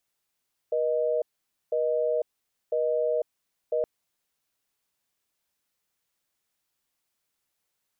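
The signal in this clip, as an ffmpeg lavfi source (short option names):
-f lavfi -i "aevalsrc='0.0531*(sin(2*PI*480*t)+sin(2*PI*620*t))*clip(min(mod(t,1),0.5-mod(t,1))/0.005,0,1)':d=3.12:s=44100"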